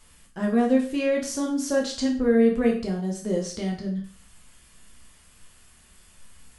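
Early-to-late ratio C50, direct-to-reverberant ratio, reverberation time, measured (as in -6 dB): 8.0 dB, -1.5 dB, 0.40 s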